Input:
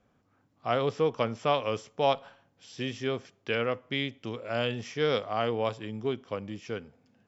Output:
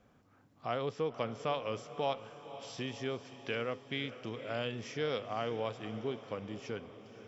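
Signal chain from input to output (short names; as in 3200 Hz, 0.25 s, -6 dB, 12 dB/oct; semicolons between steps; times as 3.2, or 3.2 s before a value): compressor 1.5:1, threshold -54 dBFS, peak gain reduction 12.5 dB; diffused feedback echo 0.519 s, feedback 58%, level -13.5 dB; gain +3 dB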